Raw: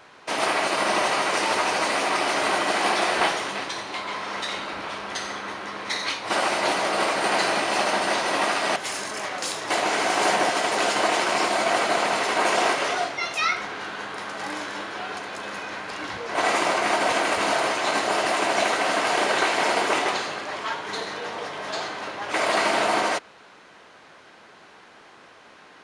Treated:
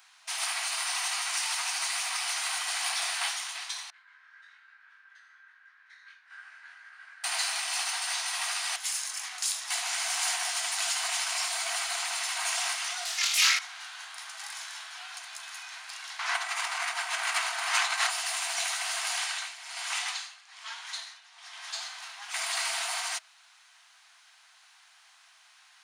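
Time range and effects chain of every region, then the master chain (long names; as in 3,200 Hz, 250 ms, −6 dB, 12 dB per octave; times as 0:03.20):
0:03.90–0:07.24: resonant band-pass 1,600 Hz, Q 11 + chorus effect 1 Hz, delay 20 ms, depth 3.4 ms
0:13.05–0:13.59: high-shelf EQ 3,300 Hz +10 dB + flutter between parallel walls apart 4.1 metres, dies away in 0.46 s + highs frequency-modulated by the lows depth 0.3 ms
0:16.19–0:18.10: parametric band 1,300 Hz +11 dB 2.7 octaves + compressor whose output falls as the input rises −18 dBFS, ratio −0.5
0:19.18–0:21.71: meter weighting curve A + amplitude tremolo 1.2 Hz, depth 82%
whole clip: brick-wall band-stop 110–650 Hz; first difference; level +2.5 dB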